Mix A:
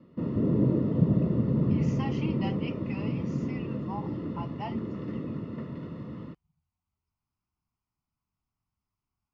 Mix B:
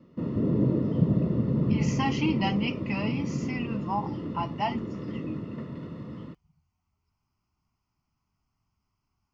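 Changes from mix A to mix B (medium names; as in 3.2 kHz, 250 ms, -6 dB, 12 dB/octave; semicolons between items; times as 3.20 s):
speech +9.0 dB; master: add treble shelf 6.3 kHz +8.5 dB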